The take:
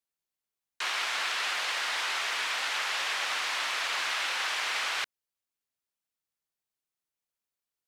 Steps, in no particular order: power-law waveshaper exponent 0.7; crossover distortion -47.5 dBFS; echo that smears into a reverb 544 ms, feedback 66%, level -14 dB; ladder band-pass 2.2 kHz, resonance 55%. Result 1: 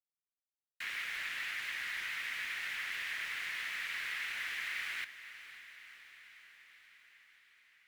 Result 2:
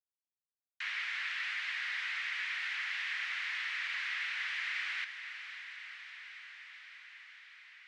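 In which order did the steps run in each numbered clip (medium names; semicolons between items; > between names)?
ladder band-pass > crossover distortion > power-law waveshaper > echo that smears into a reverb; crossover distortion > echo that smears into a reverb > power-law waveshaper > ladder band-pass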